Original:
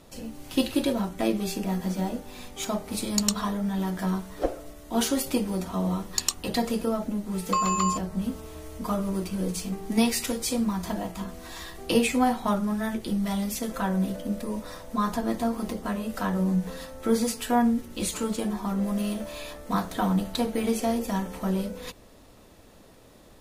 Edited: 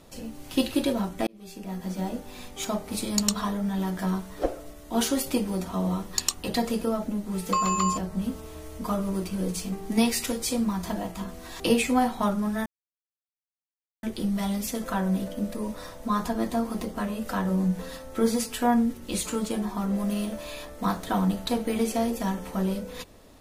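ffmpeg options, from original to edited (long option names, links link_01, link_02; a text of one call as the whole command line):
ffmpeg -i in.wav -filter_complex "[0:a]asplit=4[link_01][link_02][link_03][link_04];[link_01]atrim=end=1.27,asetpts=PTS-STARTPTS,afade=type=out:start_time=1.266:duration=0.004:curve=hsin[link_05];[link_02]atrim=start=1.27:end=11.602,asetpts=PTS-STARTPTS,afade=type=in:duration=0.94[link_06];[link_03]atrim=start=11.848:end=12.91,asetpts=PTS-STARTPTS,afade=type=out:start_time=1.058:duration=0.004:curve=hsin,apad=pad_dur=1.37[link_07];[link_04]atrim=start=12.91,asetpts=PTS-STARTPTS,afade=type=in:duration=0.004:curve=hsin[link_08];[link_05][link_06]concat=n=2:v=0:a=1[link_09];[link_07][link_08]concat=n=2:v=0:a=1[link_10];[link_09][link_10]acrossfade=duration=0.004:curve1=hsin:curve2=hsin" out.wav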